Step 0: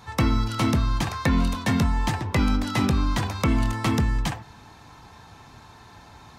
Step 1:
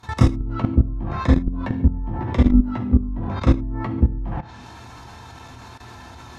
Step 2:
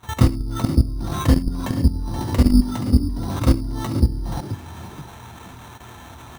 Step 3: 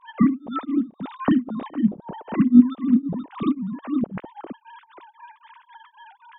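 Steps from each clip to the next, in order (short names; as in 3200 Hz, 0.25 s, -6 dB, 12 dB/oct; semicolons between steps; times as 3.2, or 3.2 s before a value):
treble ducked by the level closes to 310 Hz, closed at -18 dBFS; non-linear reverb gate 0.18 s falling, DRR -2.5 dB; level quantiser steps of 15 dB; gain +4.5 dB
sample-and-hold 9×; on a send: frequency-shifting echo 0.477 s, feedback 33%, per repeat +38 Hz, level -12.5 dB
sine-wave speech; beating tremolo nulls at 3.8 Hz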